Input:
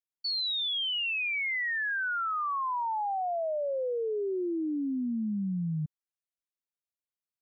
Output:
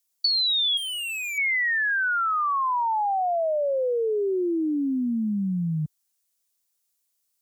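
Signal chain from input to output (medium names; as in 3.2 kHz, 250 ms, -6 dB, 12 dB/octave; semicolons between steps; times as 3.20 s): high-pass 47 Hz; tone controls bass -3 dB, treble +14 dB; compression 16:1, threshold -29 dBFS, peak gain reduction 8 dB; 0.77–1.38 s: hard clipper -38 dBFS, distortion -13 dB; trim +8 dB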